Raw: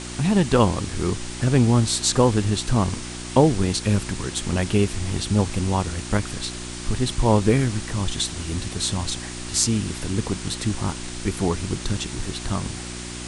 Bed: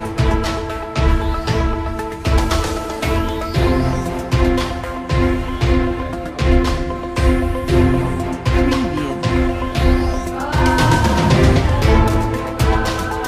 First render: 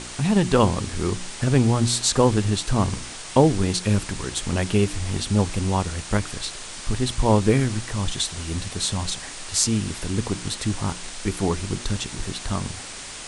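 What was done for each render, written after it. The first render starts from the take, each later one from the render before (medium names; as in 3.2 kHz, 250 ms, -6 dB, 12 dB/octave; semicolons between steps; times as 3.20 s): de-hum 60 Hz, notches 6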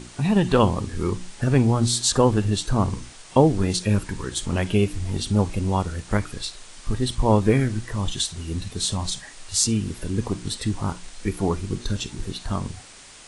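noise print and reduce 9 dB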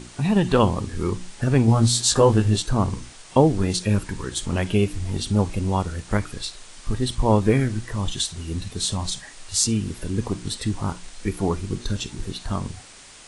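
1.66–2.62 s: doubling 18 ms -3.5 dB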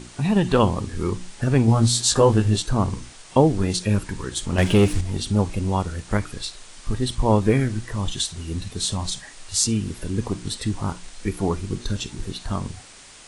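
4.58–5.01 s: waveshaping leveller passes 2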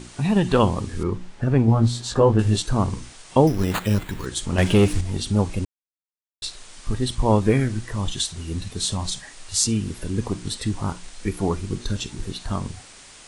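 1.03–2.39 s: low-pass 1.5 kHz 6 dB/octave; 3.47–4.26 s: sample-rate reducer 5.5 kHz; 5.65–6.42 s: mute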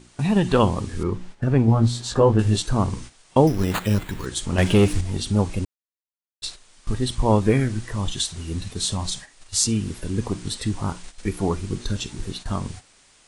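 gate -36 dBFS, range -10 dB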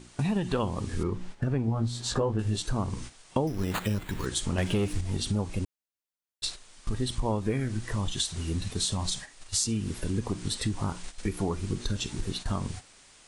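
compression 4:1, threshold -26 dBFS, peak gain reduction 13 dB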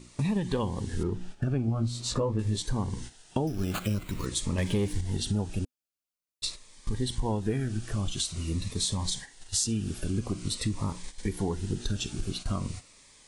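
Shepard-style phaser falling 0.47 Hz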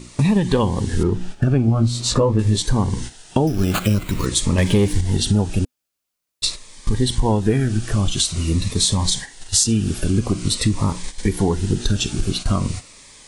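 trim +11.5 dB; peak limiter -3 dBFS, peak gain reduction 3 dB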